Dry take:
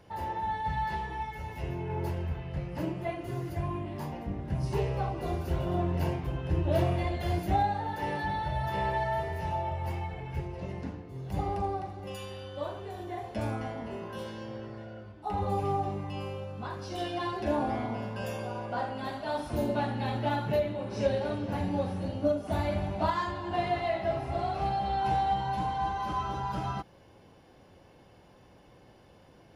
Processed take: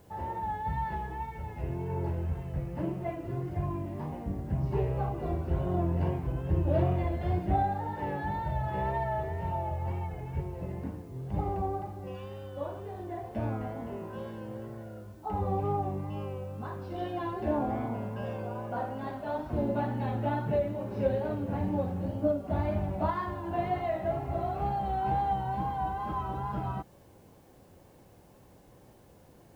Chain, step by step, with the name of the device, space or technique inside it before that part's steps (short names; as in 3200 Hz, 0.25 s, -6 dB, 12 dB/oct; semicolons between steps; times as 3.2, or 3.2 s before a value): cassette deck with a dirty head (tape spacing loss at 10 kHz 38 dB; wow and flutter; white noise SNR 37 dB); gain +1.5 dB